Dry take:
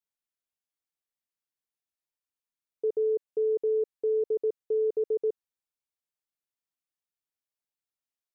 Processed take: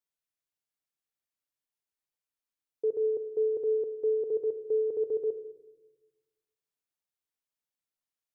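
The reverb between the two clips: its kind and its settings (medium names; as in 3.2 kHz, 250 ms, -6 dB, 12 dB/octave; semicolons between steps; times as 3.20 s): simulated room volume 620 m³, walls mixed, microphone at 0.47 m; trim -1.5 dB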